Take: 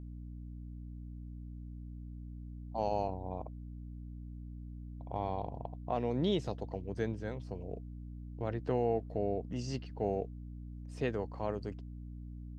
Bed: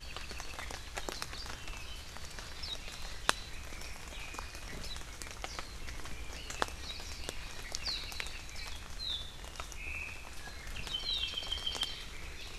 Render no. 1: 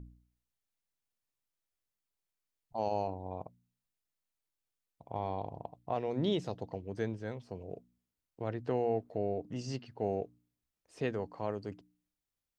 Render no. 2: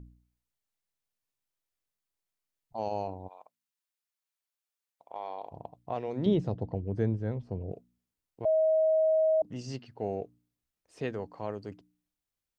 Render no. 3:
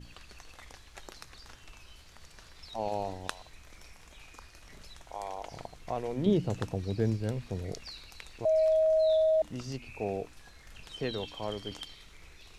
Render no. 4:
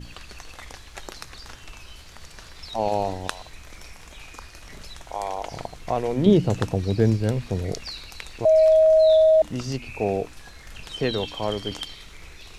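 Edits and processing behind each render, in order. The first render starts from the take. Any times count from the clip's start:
de-hum 60 Hz, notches 5
3.27–5.51 s: high-pass 1.2 kHz -> 510 Hz; 6.26–7.72 s: tilt EQ -3.5 dB/octave; 8.45–9.42 s: bleep 634 Hz -21.5 dBFS
add bed -8 dB
trim +9.5 dB; peak limiter -3 dBFS, peak gain reduction 3 dB

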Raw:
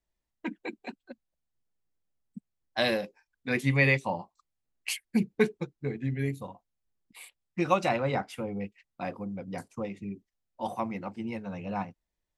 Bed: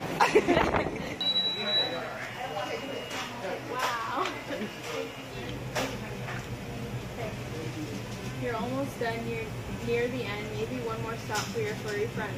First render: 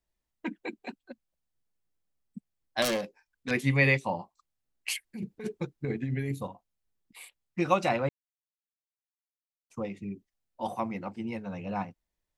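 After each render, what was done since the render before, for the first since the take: 2.82–3.51 s: self-modulated delay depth 0.27 ms; 4.95–6.48 s: compressor with a negative ratio -32 dBFS; 8.09–9.70 s: mute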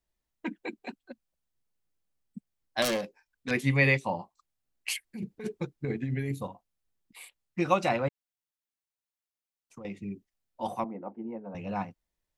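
8.08–9.85 s: compression, threshold -42 dBFS; 10.84–11.55 s: Butterworth band-pass 470 Hz, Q 0.66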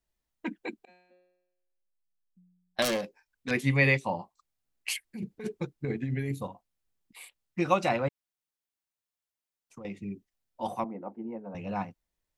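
0.85–2.79 s: feedback comb 180 Hz, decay 0.94 s, mix 100%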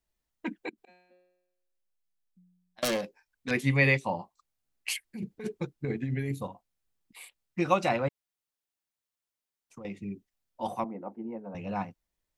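0.69–2.83 s: compression 16:1, threshold -50 dBFS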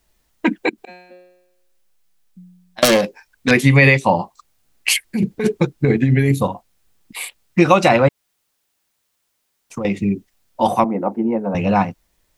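in parallel at +2 dB: compression, threshold -34 dBFS, peak gain reduction 15 dB; on the sum: loudness maximiser +12.5 dB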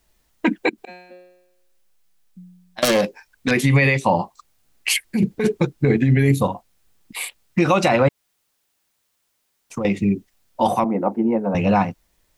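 peak limiter -7 dBFS, peak gain reduction 6 dB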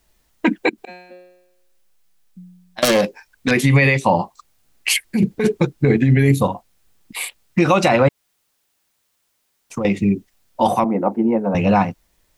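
trim +2 dB

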